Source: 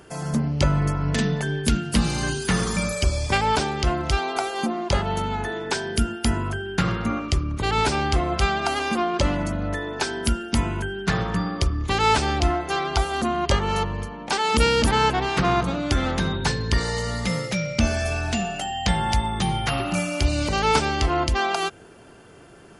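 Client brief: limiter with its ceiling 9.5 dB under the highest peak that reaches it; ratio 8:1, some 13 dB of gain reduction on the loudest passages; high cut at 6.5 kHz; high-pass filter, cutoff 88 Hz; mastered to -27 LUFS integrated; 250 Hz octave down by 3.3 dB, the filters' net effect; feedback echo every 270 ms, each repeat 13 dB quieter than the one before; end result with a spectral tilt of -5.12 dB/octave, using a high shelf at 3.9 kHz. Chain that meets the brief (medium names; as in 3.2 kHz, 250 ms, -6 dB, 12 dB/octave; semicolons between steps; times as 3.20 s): high-pass 88 Hz; low-pass 6.5 kHz; peaking EQ 250 Hz -4.5 dB; treble shelf 3.9 kHz -3 dB; compression 8:1, threshold -30 dBFS; peak limiter -24.5 dBFS; feedback delay 270 ms, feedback 22%, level -13 dB; trim +7.5 dB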